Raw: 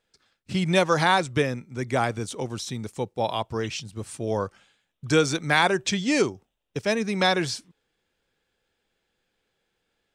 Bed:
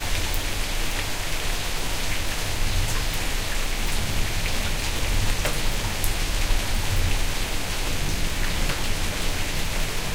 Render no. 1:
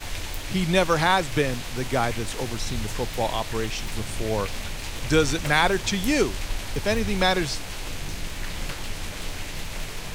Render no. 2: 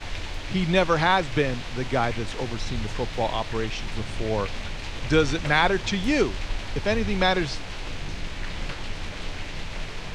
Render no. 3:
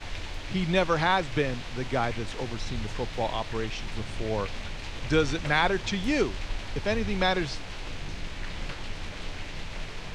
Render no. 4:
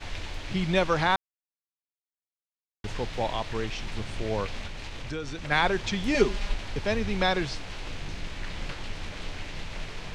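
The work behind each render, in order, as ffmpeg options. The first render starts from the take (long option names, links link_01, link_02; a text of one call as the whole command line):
ffmpeg -i in.wav -i bed.wav -filter_complex "[1:a]volume=-7dB[link_01];[0:a][link_01]amix=inputs=2:normalize=0" out.wav
ffmpeg -i in.wav -af "lowpass=4600" out.wav
ffmpeg -i in.wav -af "volume=-3.5dB" out.wav
ffmpeg -i in.wav -filter_complex "[0:a]asplit=3[link_01][link_02][link_03];[link_01]afade=type=out:start_time=4.66:duration=0.02[link_04];[link_02]acompressor=threshold=-33dB:ratio=3:attack=3.2:release=140:knee=1:detection=peak,afade=type=in:start_time=4.66:duration=0.02,afade=type=out:start_time=5.5:duration=0.02[link_05];[link_03]afade=type=in:start_time=5.5:duration=0.02[link_06];[link_04][link_05][link_06]amix=inputs=3:normalize=0,asettb=1/sr,asplit=3[link_07][link_08][link_09];[link_07]atrim=end=6.144[link_10];[link_08]atrim=start=6.14:end=6.54,asetpts=PTS-STARTPTS,afade=type=in:duration=0.004:curve=qsin,afade=type=out:start_time=0.396:duration=0.004:curve=qsin,aecho=1:1:4.9:0.87,atrim=end_sample=17640[link_11];[link_09]atrim=start=6.536[link_12];[link_10][link_11]acrossfade=duration=0.004:curve1=hsin:curve2=qsin[link_13];[link_13][link_12]acrossfade=duration=0.004:curve1=qsin:curve2=hsin,asplit=3[link_14][link_15][link_16];[link_14]atrim=end=1.16,asetpts=PTS-STARTPTS,afade=type=out:start_time=1.156:duration=0.004:curve=hsin[link_17];[link_15]atrim=start=1.16:end=2.84,asetpts=PTS-STARTPTS,volume=0[link_18];[link_16]atrim=start=2.84,asetpts=PTS-STARTPTS,afade=type=in:duration=0.004:curve=hsin[link_19];[link_17][link_18][link_19]concat=n=3:v=0:a=1" out.wav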